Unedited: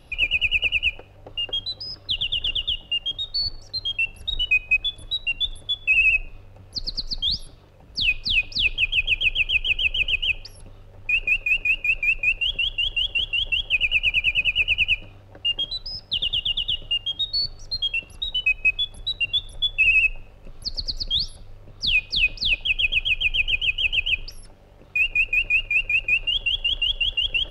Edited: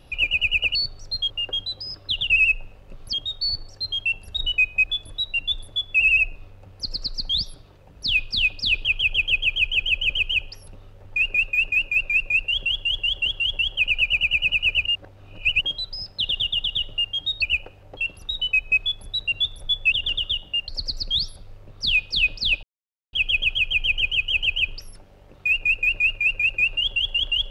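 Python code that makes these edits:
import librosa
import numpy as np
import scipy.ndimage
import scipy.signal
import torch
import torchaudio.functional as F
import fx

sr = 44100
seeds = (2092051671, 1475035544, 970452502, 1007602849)

y = fx.edit(x, sr, fx.swap(start_s=0.75, length_s=0.55, other_s=17.35, other_length_s=0.55),
    fx.swap(start_s=2.3, length_s=0.76, other_s=19.85, other_length_s=0.83),
    fx.reverse_span(start_s=14.79, length_s=0.75),
    fx.insert_silence(at_s=22.63, length_s=0.5), tone=tone)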